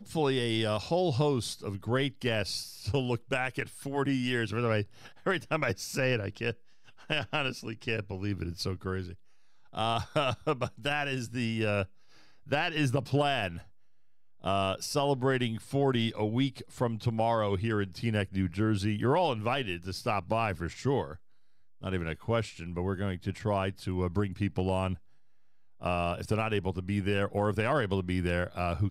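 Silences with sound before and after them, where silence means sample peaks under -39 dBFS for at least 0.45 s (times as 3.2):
6.53–7.1
9.14–9.75
11.85–12.49
13.61–14.44
21.15–21.83
24.95–25.82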